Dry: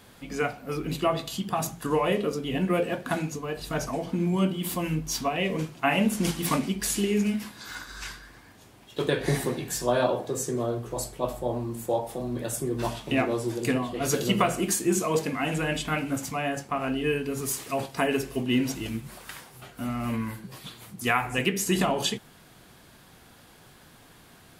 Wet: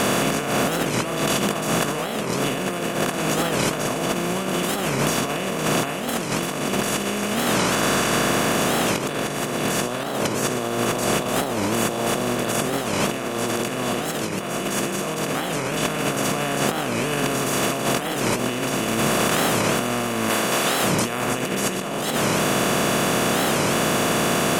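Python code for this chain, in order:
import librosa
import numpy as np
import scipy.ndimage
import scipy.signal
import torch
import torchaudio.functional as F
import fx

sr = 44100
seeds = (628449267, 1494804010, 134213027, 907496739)

y = fx.bin_compress(x, sr, power=0.2)
y = fx.low_shelf(y, sr, hz=230.0, db=-11.5, at=(20.29, 20.85))
y = fx.over_compress(y, sr, threshold_db=-18.0, ratio=-0.5)
y = fx.record_warp(y, sr, rpm=45.0, depth_cents=250.0)
y = F.gain(torch.from_numpy(y), -4.0).numpy()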